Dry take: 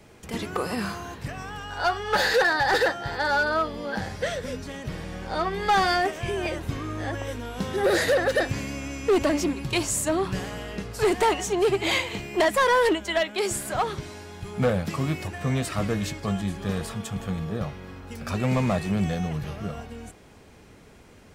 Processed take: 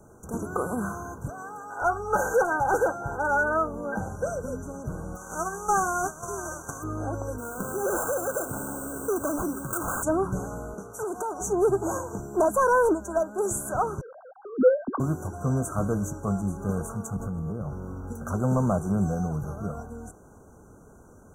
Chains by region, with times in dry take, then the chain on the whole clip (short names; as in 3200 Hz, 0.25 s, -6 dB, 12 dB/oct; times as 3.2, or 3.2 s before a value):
1.3–1.82 HPF 290 Hz + hard clip -23.5 dBFS
5.15–6.82 spectral whitening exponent 0.1 + LPF 5600 Hz + bell 160 Hz +5 dB 0.3 oct
7.38–10.03 weighting filter D + compressor 2:1, threshold -26 dBFS + sample-rate reducer 5600 Hz
10.74–11.41 HPF 400 Hz 6 dB/oct + compressor 10:1, threshold -26 dBFS
14.01–15 sine-wave speech + tilt -2.5 dB/oct
17.16–18.13 low shelf 420 Hz +6 dB + compressor 12:1, threshold -27 dBFS
whole clip: FFT band-reject 1600–5800 Hz; dynamic EQ 2400 Hz, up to -4 dB, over -47 dBFS, Q 2